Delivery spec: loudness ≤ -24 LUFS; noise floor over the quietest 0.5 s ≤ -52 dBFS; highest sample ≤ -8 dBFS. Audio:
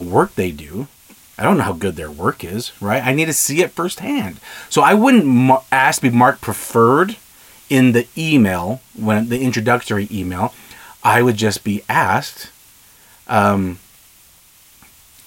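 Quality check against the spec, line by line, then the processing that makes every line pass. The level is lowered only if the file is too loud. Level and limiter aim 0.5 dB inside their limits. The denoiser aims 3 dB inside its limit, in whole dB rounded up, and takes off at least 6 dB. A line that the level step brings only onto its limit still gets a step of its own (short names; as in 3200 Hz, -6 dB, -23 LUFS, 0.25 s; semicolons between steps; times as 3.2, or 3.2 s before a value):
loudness -16.0 LUFS: fail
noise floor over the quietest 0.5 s -48 dBFS: fail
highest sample -1.5 dBFS: fail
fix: gain -8.5 dB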